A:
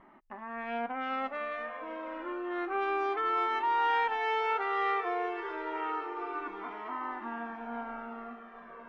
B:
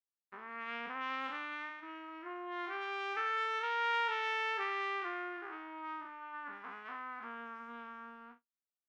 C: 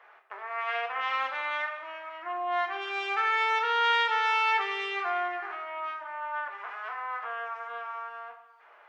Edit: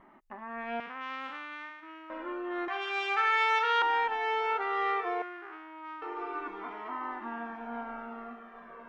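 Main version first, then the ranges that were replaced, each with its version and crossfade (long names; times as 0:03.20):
A
0:00.80–0:02.10: punch in from B
0:02.68–0:03.82: punch in from C
0:05.22–0:06.02: punch in from B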